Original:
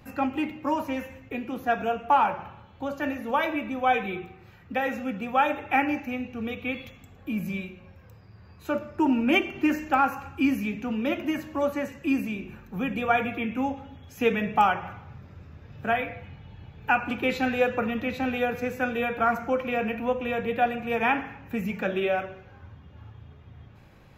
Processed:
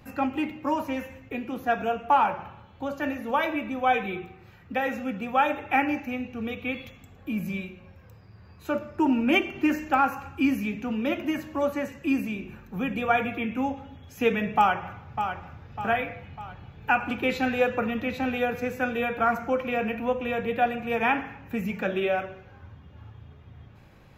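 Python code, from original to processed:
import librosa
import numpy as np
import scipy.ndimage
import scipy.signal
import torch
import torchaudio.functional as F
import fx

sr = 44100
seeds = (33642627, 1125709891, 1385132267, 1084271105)

y = fx.echo_throw(x, sr, start_s=14.57, length_s=1.07, ms=600, feedback_pct=50, wet_db=-8.0)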